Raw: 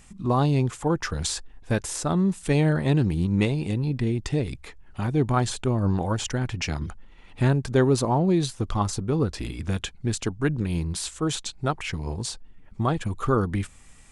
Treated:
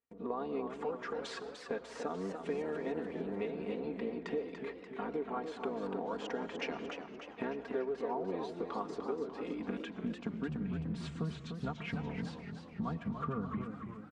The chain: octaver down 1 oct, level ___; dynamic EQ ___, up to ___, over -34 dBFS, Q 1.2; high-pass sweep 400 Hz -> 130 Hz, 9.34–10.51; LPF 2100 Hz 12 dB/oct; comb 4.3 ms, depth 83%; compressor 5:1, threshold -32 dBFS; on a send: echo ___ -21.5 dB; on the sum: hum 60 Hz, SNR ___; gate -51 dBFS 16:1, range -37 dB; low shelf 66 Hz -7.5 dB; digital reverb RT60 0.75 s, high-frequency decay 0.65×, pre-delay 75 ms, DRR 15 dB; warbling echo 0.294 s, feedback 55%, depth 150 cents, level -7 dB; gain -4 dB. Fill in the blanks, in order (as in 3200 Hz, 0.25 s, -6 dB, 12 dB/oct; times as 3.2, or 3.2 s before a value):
0 dB, 470 Hz, -4 dB, 0.227 s, 28 dB